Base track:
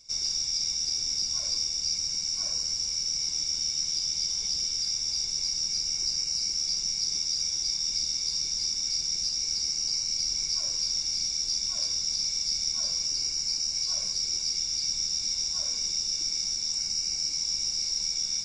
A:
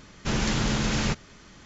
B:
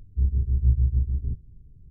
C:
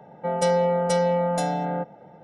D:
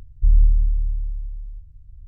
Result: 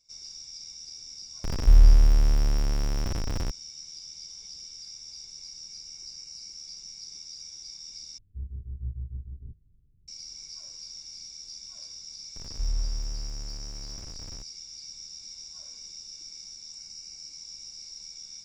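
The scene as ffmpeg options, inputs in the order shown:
-filter_complex "[4:a]asplit=2[a][b];[0:a]volume=-14dB[c];[a]aeval=exprs='val(0)+0.5*0.0841*sgn(val(0))':c=same[d];[b]aeval=exprs='val(0)+0.5*0.0794*sgn(val(0))':c=same[e];[c]asplit=2[f][g];[f]atrim=end=8.184[h];[2:a]atrim=end=1.9,asetpts=PTS-STARTPTS,volume=-14.5dB[i];[g]atrim=start=10.076[j];[d]atrim=end=2.07,asetpts=PTS-STARTPTS,volume=-1.5dB,afade=t=in:d=0.004:c=hsin,afade=t=out:st=2.066:d=0.004:c=hsin,adelay=1440[k];[e]atrim=end=2.07,asetpts=PTS-STARTPTS,volume=-15.5dB,afade=t=in:d=0.004:c=hsin,afade=t=out:st=2.066:d=0.004:c=hsin,adelay=545076S[l];[h][i]acrossfade=d=0.004:c1=hsin:c2=hsin[m];[m][j]acrossfade=d=0.004:c1=hsin:c2=hsin[n];[n][k][l]amix=inputs=3:normalize=0"

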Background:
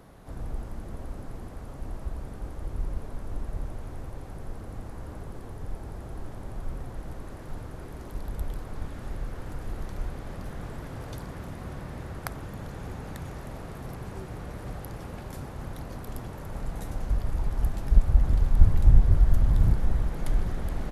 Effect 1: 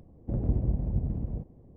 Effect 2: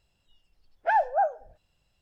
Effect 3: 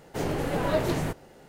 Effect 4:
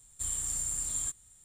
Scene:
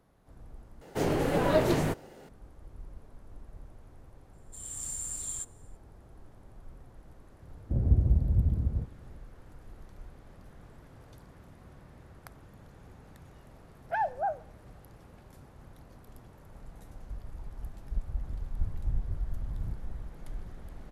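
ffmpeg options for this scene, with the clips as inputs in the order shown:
-filter_complex "[0:a]volume=-14.5dB[a];[3:a]equalizer=f=390:t=o:w=1.6:g=2.5[b];[4:a]dynaudnorm=f=140:g=5:m=13dB[c];[1:a]equalizer=f=75:w=1:g=11[d];[a]asplit=2[e][f];[e]atrim=end=0.814[g];[b]atrim=end=1.48,asetpts=PTS-STARTPTS,volume=-0.5dB[h];[f]atrim=start=2.286[i];[c]atrim=end=1.44,asetpts=PTS-STARTPTS,volume=-16.5dB,afade=t=in:d=0.004:c=hsin,afade=t=out:st=1.436:d=0.004:c=hsin,adelay=190953S[j];[d]atrim=end=1.76,asetpts=PTS-STARTPTS,volume=-4dB,afade=t=in:d=0.004:c=hsin,afade=t=out:st=1.756:d=0.004:c=hsin,adelay=7420[k];[2:a]atrim=end=2.01,asetpts=PTS-STARTPTS,volume=-7dB,afade=t=in:d=0.004:c=hsin,afade=t=out:st=2.006:d=0.004:c=hsin,adelay=13050[l];[g][h]acrossfade=d=0.004:c1=hsin:c2=hsin[m];[m][i]acrossfade=d=0.004:c1=hsin:c2=hsin[n];[n][j][k][l]amix=inputs=4:normalize=0"

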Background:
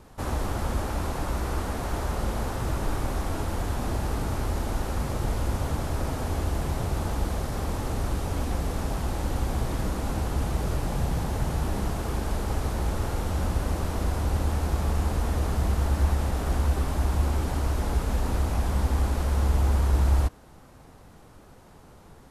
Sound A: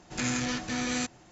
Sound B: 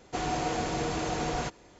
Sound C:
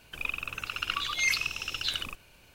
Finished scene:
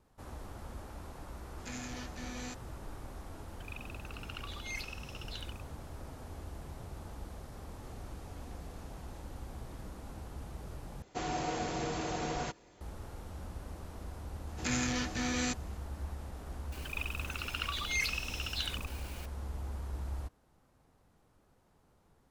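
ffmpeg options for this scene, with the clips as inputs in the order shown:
-filter_complex "[1:a]asplit=2[a][b];[3:a]asplit=2[c][d];[2:a]asplit=2[e][f];[0:a]volume=-17.5dB[g];[e]acompressor=threshold=-40dB:ratio=6:attack=3.2:release=140:knee=1:detection=peak[h];[d]aeval=exprs='val(0)+0.5*0.0126*sgn(val(0))':c=same[i];[g]asplit=2[j][k];[j]atrim=end=11.024[l];[f]atrim=end=1.79,asetpts=PTS-STARTPTS,volume=-5dB[m];[k]atrim=start=12.806[n];[a]atrim=end=1.31,asetpts=PTS-STARTPTS,volume=-13.5dB,afade=t=in:d=0.004:c=hsin,afade=t=out:st=1.306:d=0.004:c=hsin,adelay=1480[o];[c]atrim=end=2.54,asetpts=PTS-STARTPTS,volume=-15dB,afade=t=in:d=0.004:c=hsin,afade=t=out:st=2.536:d=0.004:c=hsin,adelay=3470[p];[h]atrim=end=1.79,asetpts=PTS-STARTPTS,volume=-16.5dB,afade=t=in:d=0.004:c=hsin,afade=t=out:st=1.786:d=0.004:c=hsin,adelay=7710[q];[b]atrim=end=1.31,asetpts=PTS-STARTPTS,volume=-3dB,afade=t=in:d=0.004:c=hsin,afade=t=out:st=1.306:d=0.004:c=hsin,adelay=14470[r];[i]atrim=end=2.54,asetpts=PTS-STARTPTS,volume=-7dB,afade=t=in:d=0.004:c=hsin,afade=t=out:st=2.536:d=0.004:c=hsin,adelay=16720[s];[l][m]acrossfade=d=0.004:c1=hsin:c2=hsin[t];[t][n]acrossfade=d=0.004:c1=hsin:c2=hsin[u];[u][o][p][q][r][s]amix=inputs=6:normalize=0"

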